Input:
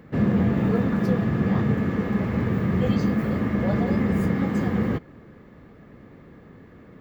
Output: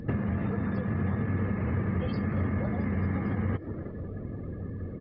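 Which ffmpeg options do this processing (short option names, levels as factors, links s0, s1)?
-filter_complex "[0:a]acrossover=split=180|750[s0][s1][s2];[s0]acompressor=threshold=0.0112:ratio=4[s3];[s1]acompressor=threshold=0.0158:ratio=4[s4];[s2]acompressor=threshold=0.00794:ratio=4[s5];[s3][s4][s5]amix=inputs=3:normalize=0,lowshelf=f=70:g=9,asplit=4[s6][s7][s8][s9];[s7]adelay=492,afreqshift=120,volume=0.126[s10];[s8]adelay=984,afreqshift=240,volume=0.049[s11];[s9]adelay=1476,afreqshift=360,volume=0.0191[s12];[s6][s10][s11][s12]amix=inputs=4:normalize=0,afftdn=nr=17:nf=-50,atempo=1.4,acompressor=threshold=0.0178:ratio=5,equalizer=f=94:w=5:g=12.5,volume=2.37" -ar 12000 -c:a libmp3lame -b:a 64k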